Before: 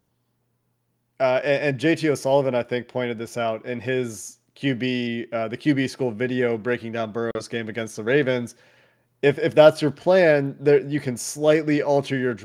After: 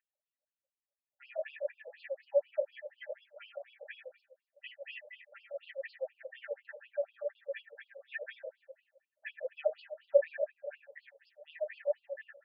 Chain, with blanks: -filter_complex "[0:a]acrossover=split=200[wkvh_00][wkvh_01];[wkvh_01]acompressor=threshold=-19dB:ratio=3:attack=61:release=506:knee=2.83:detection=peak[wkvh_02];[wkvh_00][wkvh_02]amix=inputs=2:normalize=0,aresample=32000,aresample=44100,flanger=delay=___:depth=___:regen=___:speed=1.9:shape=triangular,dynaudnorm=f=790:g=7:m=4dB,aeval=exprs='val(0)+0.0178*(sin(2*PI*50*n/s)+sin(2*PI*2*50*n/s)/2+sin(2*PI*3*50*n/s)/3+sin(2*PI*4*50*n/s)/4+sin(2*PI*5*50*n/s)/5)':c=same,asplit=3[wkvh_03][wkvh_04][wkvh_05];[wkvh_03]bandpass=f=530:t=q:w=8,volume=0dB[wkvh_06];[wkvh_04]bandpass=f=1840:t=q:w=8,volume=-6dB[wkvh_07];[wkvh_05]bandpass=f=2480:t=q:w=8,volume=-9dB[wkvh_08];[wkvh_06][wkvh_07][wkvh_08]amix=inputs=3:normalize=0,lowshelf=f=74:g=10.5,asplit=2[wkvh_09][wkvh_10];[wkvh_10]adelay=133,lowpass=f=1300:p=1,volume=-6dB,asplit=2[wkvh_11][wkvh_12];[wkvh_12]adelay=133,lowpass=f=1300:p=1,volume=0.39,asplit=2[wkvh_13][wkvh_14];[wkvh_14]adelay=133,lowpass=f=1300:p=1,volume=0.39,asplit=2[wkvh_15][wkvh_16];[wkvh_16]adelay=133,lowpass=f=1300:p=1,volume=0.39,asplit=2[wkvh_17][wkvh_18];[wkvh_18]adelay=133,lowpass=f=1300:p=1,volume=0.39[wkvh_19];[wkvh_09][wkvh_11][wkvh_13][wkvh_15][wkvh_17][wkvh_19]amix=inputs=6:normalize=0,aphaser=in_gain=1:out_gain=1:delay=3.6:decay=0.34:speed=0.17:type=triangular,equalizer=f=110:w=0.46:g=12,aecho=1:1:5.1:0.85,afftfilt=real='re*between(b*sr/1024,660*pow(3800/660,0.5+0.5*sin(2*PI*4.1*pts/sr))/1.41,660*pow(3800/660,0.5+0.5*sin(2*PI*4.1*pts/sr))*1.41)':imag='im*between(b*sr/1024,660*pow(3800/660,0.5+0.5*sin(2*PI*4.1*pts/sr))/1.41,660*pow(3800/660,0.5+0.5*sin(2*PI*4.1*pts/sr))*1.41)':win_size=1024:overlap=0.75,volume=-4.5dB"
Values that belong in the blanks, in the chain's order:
3.4, 9.1, 27